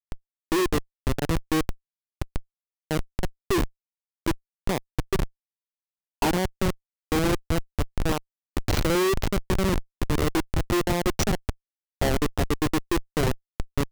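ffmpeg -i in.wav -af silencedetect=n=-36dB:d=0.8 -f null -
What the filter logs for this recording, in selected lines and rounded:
silence_start: 5.26
silence_end: 6.22 | silence_duration: 0.96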